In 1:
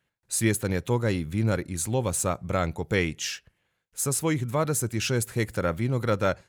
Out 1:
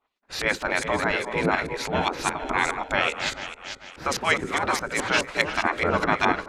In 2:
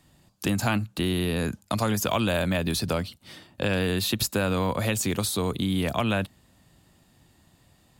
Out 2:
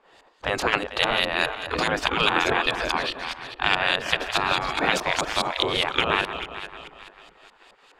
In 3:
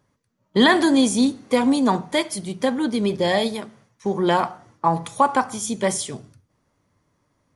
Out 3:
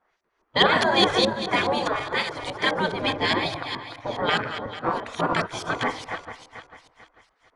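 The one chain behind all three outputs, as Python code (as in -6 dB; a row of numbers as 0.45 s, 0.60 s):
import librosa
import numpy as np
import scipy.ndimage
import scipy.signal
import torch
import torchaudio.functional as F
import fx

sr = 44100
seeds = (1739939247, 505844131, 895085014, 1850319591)

y = fx.reverse_delay_fb(x, sr, ms=222, feedback_pct=57, wet_db=-10.0)
y = fx.spec_gate(y, sr, threshold_db=-15, keep='weak')
y = fx.filter_lfo_lowpass(y, sr, shape='saw_up', hz=4.8, low_hz=980.0, high_hz=5700.0, q=0.72)
y = y * 10.0 ** (-26 / 20.0) / np.sqrt(np.mean(np.square(y)))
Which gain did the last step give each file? +15.5 dB, +14.0 dB, +9.0 dB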